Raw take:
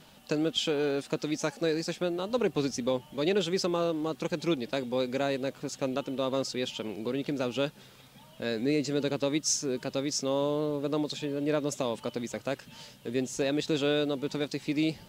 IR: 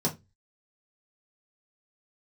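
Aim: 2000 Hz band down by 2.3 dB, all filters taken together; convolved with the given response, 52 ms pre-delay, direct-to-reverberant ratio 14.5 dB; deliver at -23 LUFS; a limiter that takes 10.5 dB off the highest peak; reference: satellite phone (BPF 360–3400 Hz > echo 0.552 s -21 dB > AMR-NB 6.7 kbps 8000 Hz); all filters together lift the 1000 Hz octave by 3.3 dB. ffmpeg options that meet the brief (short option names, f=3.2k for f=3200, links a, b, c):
-filter_complex "[0:a]equalizer=f=1k:t=o:g=5.5,equalizer=f=2k:t=o:g=-4.5,alimiter=level_in=0.5dB:limit=-24dB:level=0:latency=1,volume=-0.5dB,asplit=2[a][b];[1:a]atrim=start_sample=2205,adelay=52[c];[b][c]afir=irnorm=-1:irlink=0,volume=-22.5dB[d];[a][d]amix=inputs=2:normalize=0,highpass=360,lowpass=3.4k,aecho=1:1:552:0.0891,volume=16dB" -ar 8000 -c:a libopencore_amrnb -b:a 6700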